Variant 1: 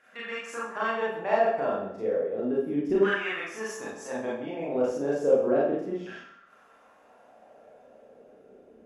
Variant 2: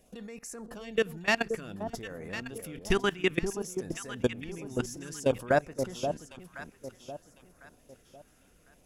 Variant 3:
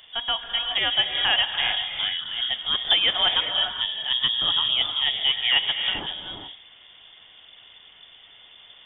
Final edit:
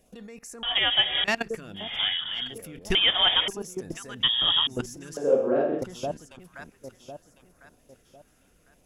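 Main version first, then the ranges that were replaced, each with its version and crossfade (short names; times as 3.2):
2
0.63–1.24 from 3
1.86–2.43 from 3, crossfade 0.24 s
2.95–3.48 from 3
4.23–4.67 from 3
5.17–5.82 from 1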